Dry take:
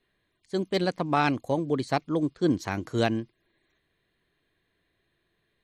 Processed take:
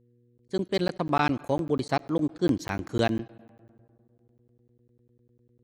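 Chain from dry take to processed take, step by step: gate -58 dBFS, range -23 dB; mains buzz 120 Hz, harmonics 4, -63 dBFS -4 dB/octave; on a send at -22.5 dB: reverberation RT60 2.2 s, pre-delay 40 ms; on the sum: crackling interface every 0.10 s, samples 512, zero, from 0.38 s

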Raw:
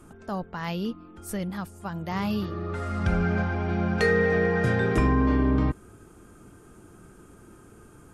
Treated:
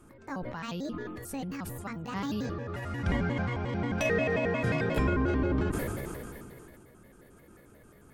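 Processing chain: pitch shift switched off and on +5.5 st, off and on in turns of 89 ms; decay stretcher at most 22 dB/s; trim -5.5 dB

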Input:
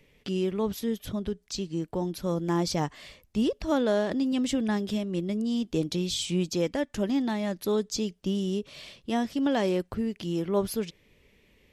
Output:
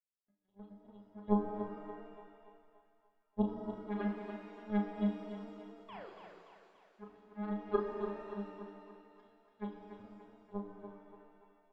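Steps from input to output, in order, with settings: spectral levelling over time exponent 0.6; treble shelf 2.4 kHz -8 dB; pitch-class resonator G#, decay 0.45 s; phase shifter stages 8, 2.4 Hz, lowest notch 120–1500 Hz; painted sound fall, 5.88–6.10 s, 340–1200 Hz -36 dBFS; power-law waveshaper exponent 3; doubling 35 ms -6 dB; thinning echo 288 ms, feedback 53%, high-pass 350 Hz, level -7 dB; pitch-shifted reverb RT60 1.9 s, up +7 st, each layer -8 dB, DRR 4.5 dB; trim +7.5 dB

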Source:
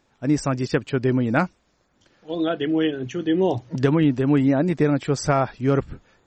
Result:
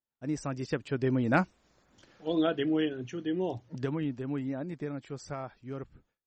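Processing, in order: Doppler pass-by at 1.95 s, 6 m/s, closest 2.4 m; gate with hold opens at -60 dBFS

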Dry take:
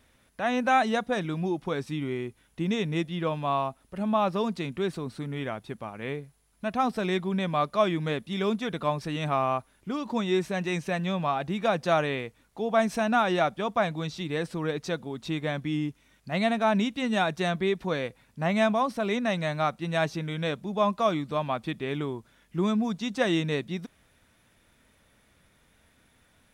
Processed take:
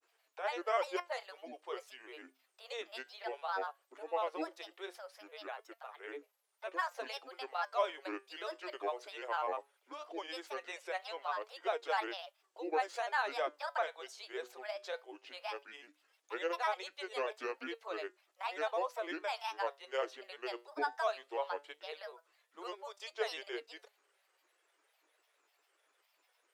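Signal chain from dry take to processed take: steep high-pass 420 Hz 72 dB/octave; granulator 100 ms, grains 20 per s, spray 14 ms, pitch spread up and down by 7 st; flange 0.17 Hz, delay 4.2 ms, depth 4.2 ms, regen +82%; trim -4 dB

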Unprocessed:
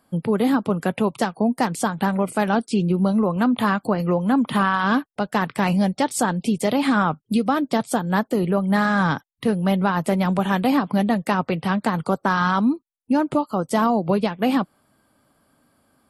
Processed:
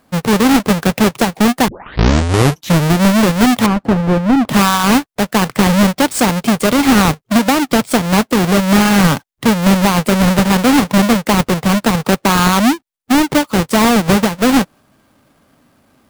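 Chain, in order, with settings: square wave that keeps the level; 1.68 s: tape start 1.31 s; 3.66–4.49 s: low-pass 1 kHz 6 dB/octave; trim +4 dB

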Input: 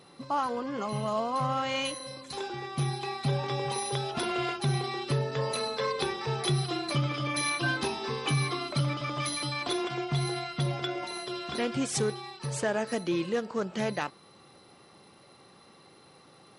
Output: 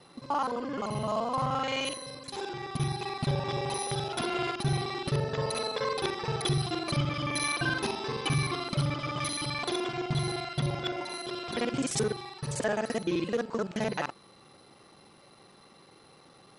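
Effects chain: time reversed locally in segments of 43 ms

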